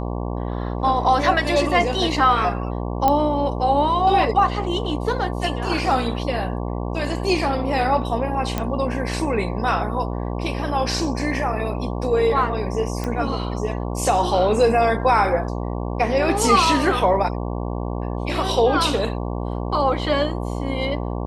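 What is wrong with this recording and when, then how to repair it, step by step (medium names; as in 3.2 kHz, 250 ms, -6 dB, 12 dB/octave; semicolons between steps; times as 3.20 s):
buzz 60 Hz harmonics 19 -26 dBFS
3.08 s: pop -6 dBFS
8.58 s: pop -9 dBFS
13.04 s: pop -13 dBFS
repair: de-click; de-hum 60 Hz, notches 19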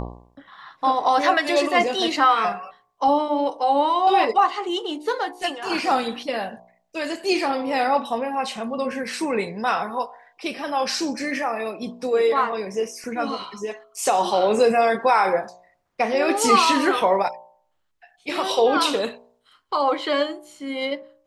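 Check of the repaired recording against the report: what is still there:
nothing left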